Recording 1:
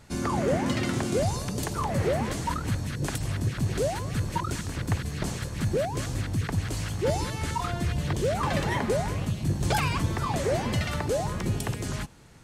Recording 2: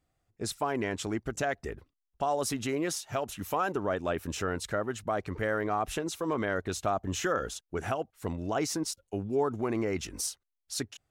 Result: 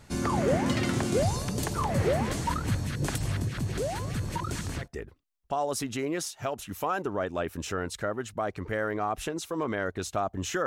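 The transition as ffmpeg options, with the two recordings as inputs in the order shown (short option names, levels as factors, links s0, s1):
-filter_complex "[0:a]asettb=1/sr,asplit=3[s0][s1][s2];[s0]atrim=end=3.424[s3];[s1]atrim=start=3.42:end=4.88,asetpts=PTS-STARTPTS,afade=t=in:d=0.004:c=qsin,afade=t=out:st=1.456:d=0.004:c=qsin,acompressor=threshold=0.0355:ratio=2:attack=3.2:release=140:knee=1:detection=peak[s4];[s2]atrim=start=4.876[s5];[s3][s4]acrossfade=d=0.004:c1=hsin:c2=qsin[s6];[s6][s5]acrossfade=d=0.004:c1=qsin:c2=hsin,apad=whole_dur=10.66,atrim=end=10.66,atrim=end=4.88,asetpts=PTS-STARTPTS[s7];[1:a]atrim=start=1.48:end=7.36,asetpts=PTS-STARTPTS[s8];[s7][s8]acrossfade=d=0.1:c1=tri:c2=tri"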